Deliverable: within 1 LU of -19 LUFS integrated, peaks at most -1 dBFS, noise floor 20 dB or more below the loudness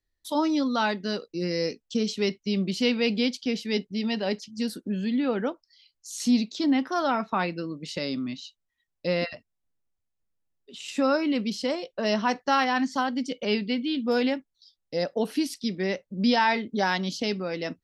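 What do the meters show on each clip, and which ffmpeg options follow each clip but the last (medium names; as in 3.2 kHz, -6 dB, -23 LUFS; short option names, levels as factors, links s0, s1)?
loudness -27.0 LUFS; peak level -10.5 dBFS; loudness target -19.0 LUFS
-> -af "volume=2.51"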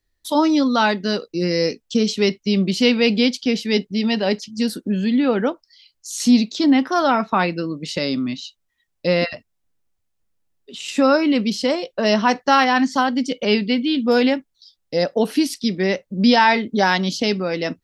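loudness -19.0 LUFS; peak level -2.5 dBFS; noise floor -72 dBFS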